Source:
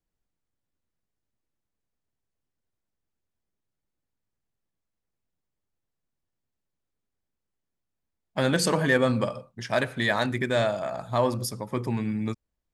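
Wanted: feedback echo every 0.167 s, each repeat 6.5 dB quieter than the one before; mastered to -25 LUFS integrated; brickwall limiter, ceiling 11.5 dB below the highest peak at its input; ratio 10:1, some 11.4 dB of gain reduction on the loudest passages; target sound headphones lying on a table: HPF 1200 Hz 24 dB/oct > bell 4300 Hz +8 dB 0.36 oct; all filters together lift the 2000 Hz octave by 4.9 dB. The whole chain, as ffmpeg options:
-af "equalizer=f=2k:t=o:g=6,acompressor=threshold=-26dB:ratio=10,alimiter=limit=-23dB:level=0:latency=1,highpass=f=1.2k:w=0.5412,highpass=f=1.2k:w=1.3066,equalizer=f=4.3k:t=o:w=0.36:g=8,aecho=1:1:167|334|501|668|835|1002:0.473|0.222|0.105|0.0491|0.0231|0.0109,volume=12dB"

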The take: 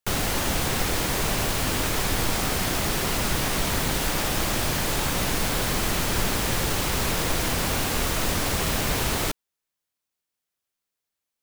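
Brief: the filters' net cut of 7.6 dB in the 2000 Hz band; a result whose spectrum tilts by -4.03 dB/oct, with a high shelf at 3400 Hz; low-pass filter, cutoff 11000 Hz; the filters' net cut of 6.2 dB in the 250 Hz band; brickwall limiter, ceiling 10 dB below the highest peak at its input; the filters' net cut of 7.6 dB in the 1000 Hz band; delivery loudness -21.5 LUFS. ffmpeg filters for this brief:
-af "lowpass=11k,equalizer=f=250:t=o:g=-8.5,equalizer=f=1k:t=o:g=-7.5,equalizer=f=2k:t=o:g=-5.5,highshelf=f=3.4k:g=-5.5,volume=13dB,alimiter=limit=-11.5dB:level=0:latency=1"

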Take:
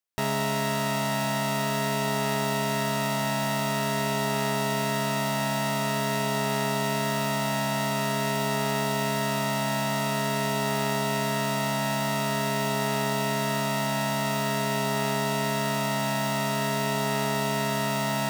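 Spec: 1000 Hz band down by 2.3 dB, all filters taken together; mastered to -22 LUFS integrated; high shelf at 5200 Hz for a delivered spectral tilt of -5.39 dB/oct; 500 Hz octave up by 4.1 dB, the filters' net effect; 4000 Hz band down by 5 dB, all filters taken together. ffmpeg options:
-af "equalizer=f=500:t=o:g=8.5,equalizer=f=1k:t=o:g=-5,equalizer=f=4k:t=o:g=-4.5,highshelf=f=5.2k:g=-4.5,volume=4dB"

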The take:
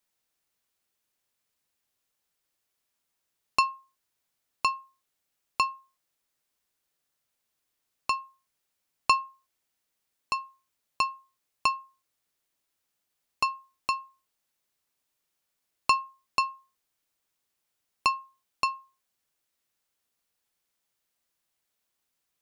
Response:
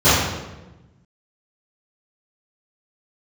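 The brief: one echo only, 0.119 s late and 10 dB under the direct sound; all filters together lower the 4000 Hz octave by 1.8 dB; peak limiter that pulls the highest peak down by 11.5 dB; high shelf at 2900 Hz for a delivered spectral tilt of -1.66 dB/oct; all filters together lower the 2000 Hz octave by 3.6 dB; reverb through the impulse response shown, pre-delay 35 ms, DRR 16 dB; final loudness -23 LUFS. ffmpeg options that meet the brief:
-filter_complex "[0:a]equalizer=f=2k:t=o:g=-6.5,highshelf=f=2.9k:g=7,equalizer=f=4k:t=o:g=-7,alimiter=limit=-20.5dB:level=0:latency=1,aecho=1:1:119:0.316,asplit=2[a][b];[1:a]atrim=start_sample=2205,adelay=35[c];[b][c]afir=irnorm=-1:irlink=0,volume=-42dB[d];[a][d]amix=inputs=2:normalize=0,volume=13dB"

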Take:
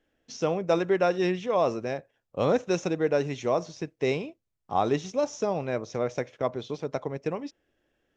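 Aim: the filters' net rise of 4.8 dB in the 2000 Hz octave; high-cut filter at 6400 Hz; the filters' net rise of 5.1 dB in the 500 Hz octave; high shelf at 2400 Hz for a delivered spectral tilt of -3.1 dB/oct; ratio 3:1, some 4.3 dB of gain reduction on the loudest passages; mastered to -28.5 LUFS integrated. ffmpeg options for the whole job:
-af "lowpass=6.4k,equalizer=f=500:t=o:g=6,equalizer=f=2k:t=o:g=9,highshelf=f=2.4k:g=-6.5,acompressor=threshold=-20dB:ratio=3,volume=-1.5dB"

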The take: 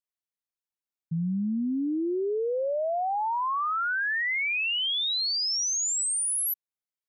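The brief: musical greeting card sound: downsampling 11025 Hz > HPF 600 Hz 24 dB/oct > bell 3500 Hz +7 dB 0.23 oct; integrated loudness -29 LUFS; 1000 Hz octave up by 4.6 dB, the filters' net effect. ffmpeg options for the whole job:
-af "equalizer=f=1k:t=o:g=6,aresample=11025,aresample=44100,highpass=f=600:w=0.5412,highpass=f=600:w=1.3066,equalizer=f=3.5k:t=o:w=0.23:g=7,volume=-5.5dB"

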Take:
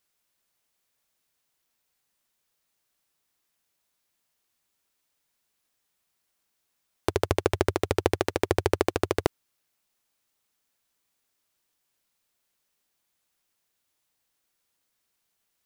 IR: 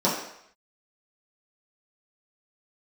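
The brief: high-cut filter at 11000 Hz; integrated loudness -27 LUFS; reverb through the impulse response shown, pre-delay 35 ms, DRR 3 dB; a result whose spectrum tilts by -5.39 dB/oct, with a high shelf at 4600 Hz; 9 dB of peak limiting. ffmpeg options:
-filter_complex "[0:a]lowpass=11k,highshelf=f=4.6k:g=3,alimiter=limit=-11.5dB:level=0:latency=1,asplit=2[a][b];[1:a]atrim=start_sample=2205,adelay=35[c];[b][c]afir=irnorm=-1:irlink=0,volume=-18dB[d];[a][d]amix=inputs=2:normalize=0,volume=5dB"

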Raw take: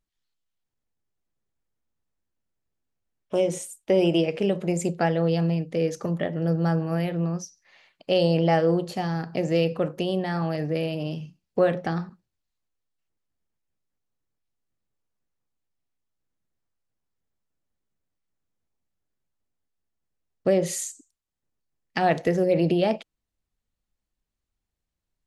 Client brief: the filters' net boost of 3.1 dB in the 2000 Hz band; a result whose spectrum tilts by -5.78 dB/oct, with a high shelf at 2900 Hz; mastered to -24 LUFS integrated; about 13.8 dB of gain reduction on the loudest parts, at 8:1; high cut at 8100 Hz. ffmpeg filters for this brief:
-af "lowpass=8.1k,equalizer=f=2k:t=o:g=5,highshelf=f=2.9k:g=-3,acompressor=threshold=-31dB:ratio=8,volume=12dB"

